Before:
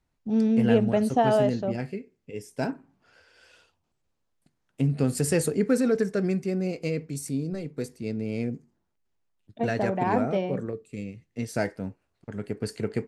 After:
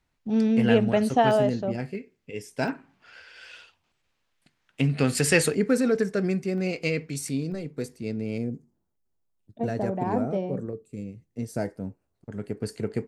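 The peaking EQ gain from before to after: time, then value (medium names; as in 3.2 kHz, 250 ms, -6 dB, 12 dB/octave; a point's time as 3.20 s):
peaking EQ 2.5 kHz 2.5 oct
+6 dB
from 1.31 s 0 dB
from 1.95 s +6.5 dB
from 2.68 s +13.5 dB
from 5.55 s +3 dB
from 6.58 s +9.5 dB
from 7.52 s +1 dB
from 8.38 s -10.5 dB
from 12.32 s -3.5 dB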